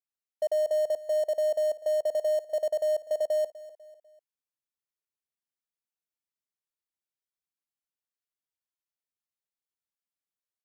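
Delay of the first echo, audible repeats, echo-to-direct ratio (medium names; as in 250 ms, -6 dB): 248 ms, 3, -16.5 dB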